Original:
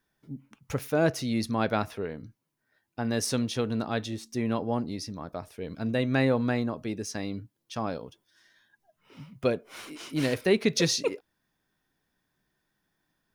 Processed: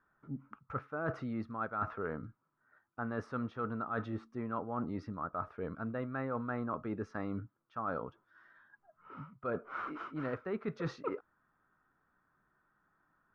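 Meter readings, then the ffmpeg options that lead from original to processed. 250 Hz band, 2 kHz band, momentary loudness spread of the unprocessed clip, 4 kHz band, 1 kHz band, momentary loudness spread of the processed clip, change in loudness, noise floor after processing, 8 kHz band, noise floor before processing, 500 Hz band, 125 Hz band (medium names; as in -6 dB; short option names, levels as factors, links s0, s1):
-10.0 dB, -9.0 dB, 17 LU, under -25 dB, -3.5 dB, 9 LU, -10.0 dB, -79 dBFS, under -30 dB, -80 dBFS, -11.0 dB, -10.0 dB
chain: -af "lowpass=f=1300:t=q:w=7.4,areverse,acompressor=threshold=0.0251:ratio=12,areverse,volume=0.841"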